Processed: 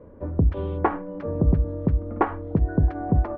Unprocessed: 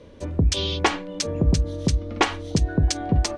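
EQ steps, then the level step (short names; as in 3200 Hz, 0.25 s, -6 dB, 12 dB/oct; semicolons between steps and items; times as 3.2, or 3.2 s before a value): LPF 1400 Hz 24 dB/oct; 0.0 dB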